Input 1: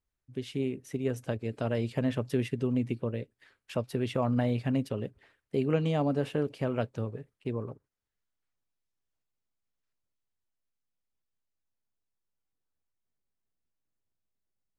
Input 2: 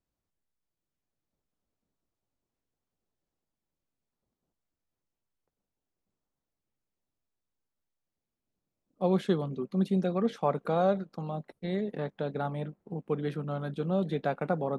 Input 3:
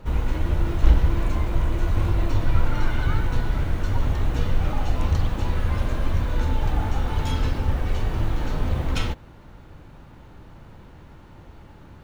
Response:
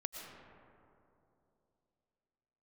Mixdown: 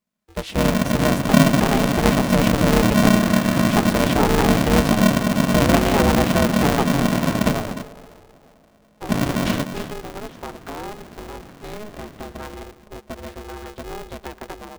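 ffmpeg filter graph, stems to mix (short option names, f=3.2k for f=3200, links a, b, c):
-filter_complex "[0:a]equalizer=f=78:w=0.93:g=-11.5,volume=2dB,asplit=2[a][b];[b]volume=-5.5dB[c];[1:a]acompressor=threshold=-29dB:ratio=6,volume=-7.5dB,asplit=2[d][e];[e]volume=-12.5dB[f];[2:a]adelay=500,volume=-5dB,asplit=3[g][h][i];[g]atrim=end=7.53,asetpts=PTS-STARTPTS,afade=t=out:st=7.526:d=0.004:c=hsin[j];[h]atrim=start=7.53:end=9.09,asetpts=PTS-STARTPTS,volume=0[k];[i]atrim=start=9.09,asetpts=PTS-STARTPTS,afade=t=in:d=0.004:c=hsin[l];[j][k][l]concat=n=3:v=0:a=1,asplit=2[m][n];[n]volume=-10.5dB[o];[3:a]atrim=start_sample=2205[p];[c][f]amix=inputs=2:normalize=0[q];[q][p]afir=irnorm=-1:irlink=0[r];[o]aecho=0:1:299:1[s];[a][d][m][r][s]amix=inputs=5:normalize=0,dynaudnorm=f=130:g=5:m=6dB,aeval=exprs='val(0)*sgn(sin(2*PI*210*n/s))':c=same"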